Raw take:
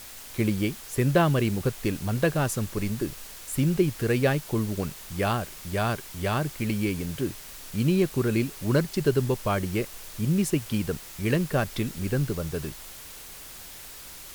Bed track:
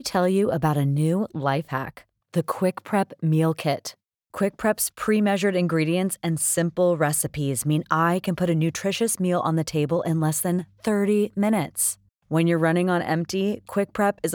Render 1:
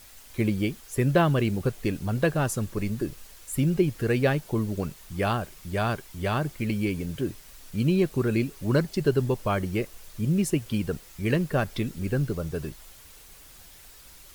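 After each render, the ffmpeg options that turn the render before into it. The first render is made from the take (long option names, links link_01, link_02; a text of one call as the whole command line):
ffmpeg -i in.wav -af "afftdn=noise_reduction=8:noise_floor=-43" out.wav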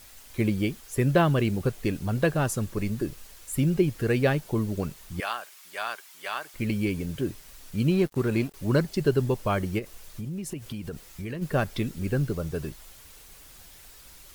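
ffmpeg -i in.wav -filter_complex "[0:a]asettb=1/sr,asplit=3[link_01][link_02][link_03];[link_01]atrim=end=5.204[link_04];[link_02]atrim=start=5.2:end=6.54,asetpts=PTS-STARTPTS,afade=type=in:duration=0.004:curve=qsin,afade=type=out:start_time=1.336:duration=0.004:curve=qsin,highpass=1000[link_05];[link_03]atrim=start=6.536[link_06];[link_04][link_05]acrossfade=duration=0.004:curve1=hsin:curve2=qsin[link_07];[link_07][link_06]acrossfade=duration=0.004:curve1=qsin:curve2=hsin,asettb=1/sr,asplit=3[link_08][link_09][link_10];[link_08]atrim=end=7.914[link_11];[link_09]atrim=start=7.91:end=8.54,asetpts=PTS-STARTPTS,afade=type=in:duration=0.004:curve=qsin,afade=type=out:start_time=0.626:duration=0.004:curve=qsin,aeval=exprs='sgn(val(0))*max(abs(val(0))-0.0075,0)':channel_layout=same[link_12];[link_10]atrim=start=8.536[link_13];[link_11][link_12]acrossfade=duration=0.004:curve1=hsin:curve2=qsin[link_14];[link_14][link_13]acrossfade=duration=0.004:curve1=qsin:curve2=hsin,asplit=3[link_15][link_16][link_17];[link_15]afade=type=out:start_time=9.78:duration=0.02[link_18];[link_16]acompressor=threshold=-31dB:ratio=6:attack=3.2:release=140:knee=1:detection=peak,afade=type=in:start_time=9.78:duration=0.02,afade=type=out:start_time=11.41:duration=0.02[link_19];[link_17]afade=type=in:start_time=11.41:duration=0.02[link_20];[link_18][link_19][link_20]amix=inputs=3:normalize=0" out.wav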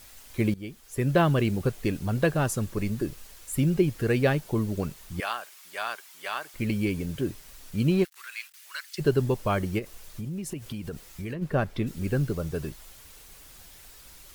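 ffmpeg -i in.wav -filter_complex "[0:a]asplit=3[link_01][link_02][link_03];[link_01]afade=type=out:start_time=8.03:duration=0.02[link_04];[link_02]highpass=frequency=1500:width=0.5412,highpass=frequency=1500:width=1.3066,afade=type=in:start_time=8.03:duration=0.02,afade=type=out:start_time=8.98:duration=0.02[link_05];[link_03]afade=type=in:start_time=8.98:duration=0.02[link_06];[link_04][link_05][link_06]amix=inputs=3:normalize=0,asplit=3[link_07][link_08][link_09];[link_07]afade=type=out:start_time=11.33:duration=0.02[link_10];[link_08]highshelf=frequency=3600:gain=-11.5,afade=type=in:start_time=11.33:duration=0.02,afade=type=out:start_time=11.86:duration=0.02[link_11];[link_09]afade=type=in:start_time=11.86:duration=0.02[link_12];[link_10][link_11][link_12]amix=inputs=3:normalize=0,asplit=2[link_13][link_14];[link_13]atrim=end=0.54,asetpts=PTS-STARTPTS,afade=type=out:start_time=0.536:duration=0.004:curve=hsin:silence=0.133352[link_15];[link_14]atrim=start=0.54,asetpts=PTS-STARTPTS,afade=type=in:duration=0.7:silence=0.133352[link_16];[link_15][link_16]concat=n=2:v=0:a=1" out.wav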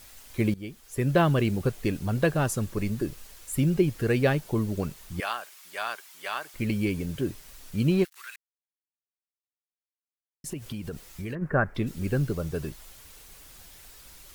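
ffmpeg -i in.wav -filter_complex "[0:a]asettb=1/sr,asplit=3[link_01][link_02][link_03];[link_01]atrim=end=11.354[link_04];[link_02]atrim=start=11.35:end=11.75,asetpts=PTS-STARTPTS,afade=type=in:duration=0.004:curve=qsin,afade=type=out:start_time=0.396:duration=0.004:curve=qsin,highshelf=frequency=2400:width_type=q:width=3:gain=-13.5[link_05];[link_03]atrim=start=11.746[link_06];[link_04][link_05]acrossfade=duration=0.004:curve1=hsin:curve2=qsin[link_07];[link_07][link_06]acrossfade=duration=0.004:curve1=qsin:curve2=hsin,asplit=3[link_08][link_09][link_10];[link_08]atrim=end=8.36,asetpts=PTS-STARTPTS,afade=type=out:start_time=8.356:duration=0.004:curve=hsin[link_11];[link_09]atrim=start=8.36:end=10.44,asetpts=PTS-STARTPTS,volume=0[link_12];[link_10]atrim=start=10.44,asetpts=PTS-STARTPTS,afade=type=in:duration=0.004:curve=hsin[link_13];[link_11][link_12][link_13]concat=n=3:v=0:a=1" out.wav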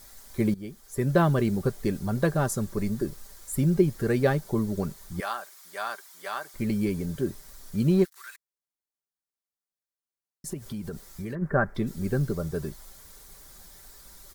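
ffmpeg -i in.wav -af "equalizer=frequency=2700:width=2.6:gain=-11.5,aecho=1:1:5.1:0.31" out.wav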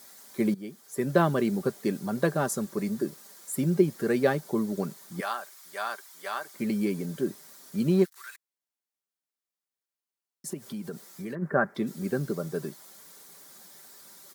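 ffmpeg -i in.wav -af "highpass=frequency=170:width=0.5412,highpass=frequency=170:width=1.3066" out.wav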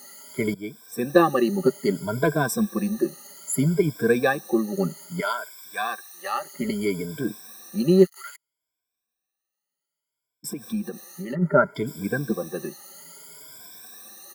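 ffmpeg -i in.wav -af "afftfilt=real='re*pow(10,24/40*sin(2*PI*(1.7*log(max(b,1)*sr/1024/100)/log(2)-(0.62)*(pts-256)/sr)))':imag='im*pow(10,24/40*sin(2*PI*(1.7*log(max(b,1)*sr/1024/100)/log(2)-(0.62)*(pts-256)/sr)))':win_size=1024:overlap=0.75" out.wav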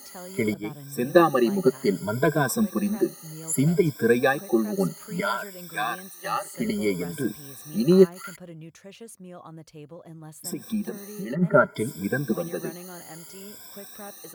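ffmpeg -i in.wav -i bed.wav -filter_complex "[1:a]volume=-20.5dB[link_01];[0:a][link_01]amix=inputs=2:normalize=0" out.wav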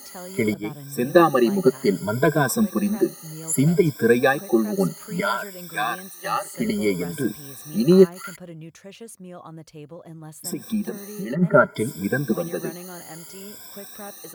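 ffmpeg -i in.wav -af "volume=3dB,alimiter=limit=-2dB:level=0:latency=1" out.wav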